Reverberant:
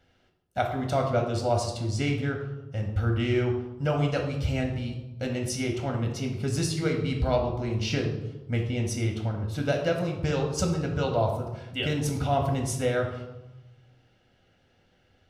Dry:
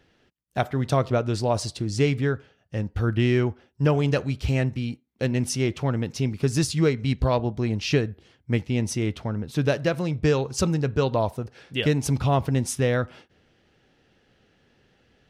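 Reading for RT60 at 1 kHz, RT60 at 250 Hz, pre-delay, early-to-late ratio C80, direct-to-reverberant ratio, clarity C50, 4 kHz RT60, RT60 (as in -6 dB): 1.0 s, 1.2 s, 3 ms, 8.5 dB, 1.5 dB, 6.0 dB, 0.65 s, 1.0 s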